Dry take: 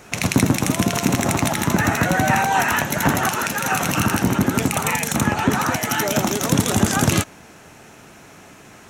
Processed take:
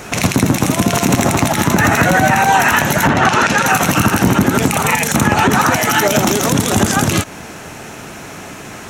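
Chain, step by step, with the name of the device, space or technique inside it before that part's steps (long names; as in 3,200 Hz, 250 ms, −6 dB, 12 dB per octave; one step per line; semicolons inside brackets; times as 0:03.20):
0:03.07–0:03.65: low-pass filter 3,500 Hz → 7,100 Hz 12 dB per octave
loud club master (downward compressor 2.5 to 1, threshold −20 dBFS, peak gain reduction 6.5 dB; hard clipping −6 dBFS, distortion −47 dB; boost into a limiter +14 dB)
level −1 dB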